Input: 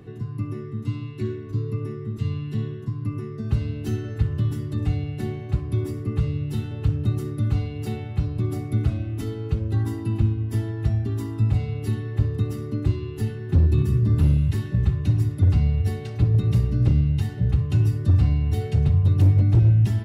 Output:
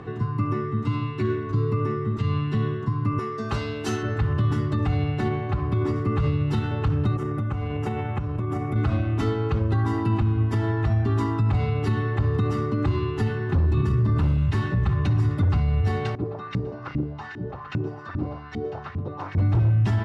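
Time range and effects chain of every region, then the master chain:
3.19–4.03 s: tone controls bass -12 dB, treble +10 dB + doubling 18 ms -10.5 dB
5.28–5.96 s: treble shelf 7.1 kHz -10 dB + compression 2:1, threshold -24 dBFS
7.16–8.76 s: peaking EQ 4.3 kHz -13 dB 0.53 oct + compression, threshold -28 dBFS
16.15–19.38 s: peaking EQ 5.6 kHz +10.5 dB 1 oct + delay 122 ms -6.5 dB + LFO band-pass saw up 2.5 Hz 230–2100 Hz
whole clip: low-pass 6.1 kHz 12 dB/octave; peaking EQ 1.1 kHz +13 dB 1.6 oct; peak limiter -19 dBFS; trim +4 dB

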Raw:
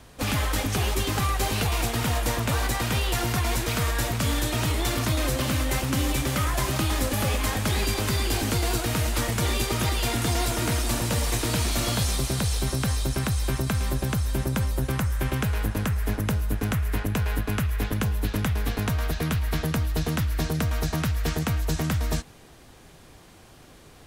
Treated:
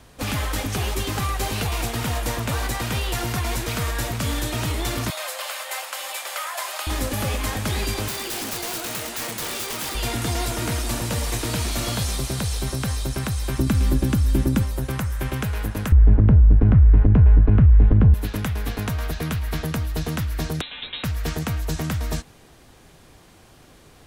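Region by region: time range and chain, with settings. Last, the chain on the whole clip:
5.10–6.87 s: steep high-pass 580 Hz + band-stop 5.9 kHz, Q 15
8.08–9.95 s: high-pass 240 Hz + integer overflow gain 22.5 dB
13.58–14.63 s: resonant low shelf 430 Hz +6.5 dB, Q 1.5 + comb 3.5 ms, depth 33%
15.92–18.14 s: low-pass 2.6 kHz + tilt EQ -4.5 dB/octave + compression 4:1, threshold -9 dBFS
20.61–21.04 s: high-pass 320 Hz + frequency inversion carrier 4 kHz
whole clip: none

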